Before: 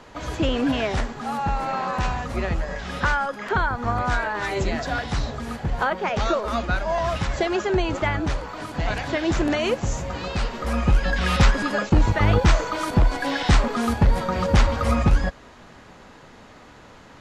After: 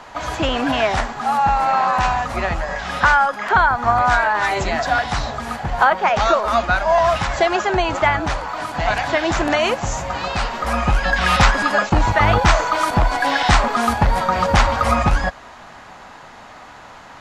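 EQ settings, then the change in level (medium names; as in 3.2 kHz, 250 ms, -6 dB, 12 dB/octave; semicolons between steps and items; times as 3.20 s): FFT filter 480 Hz 0 dB, 720 Hz +11 dB, 3.2 kHz +6 dB; 0.0 dB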